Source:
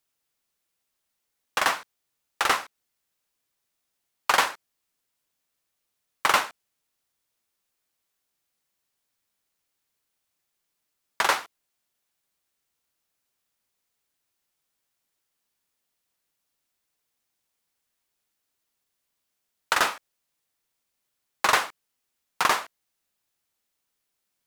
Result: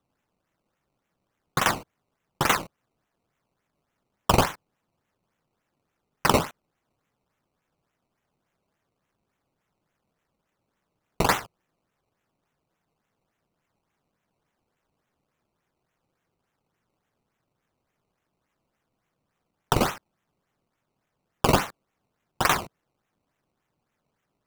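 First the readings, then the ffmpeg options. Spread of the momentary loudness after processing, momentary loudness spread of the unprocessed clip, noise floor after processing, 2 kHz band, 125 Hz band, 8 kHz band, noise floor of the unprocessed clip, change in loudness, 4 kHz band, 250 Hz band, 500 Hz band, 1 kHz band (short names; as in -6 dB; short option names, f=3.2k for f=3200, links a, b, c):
10 LU, 9 LU, -80 dBFS, -3.5 dB, +21.5 dB, 0.0 dB, -80 dBFS, 0.0 dB, -1.5 dB, +14.0 dB, +6.0 dB, -0.5 dB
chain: -af "acrusher=samples=18:mix=1:aa=0.000001:lfo=1:lforange=18:lforate=3.5,equalizer=f=150:w=1.3:g=6"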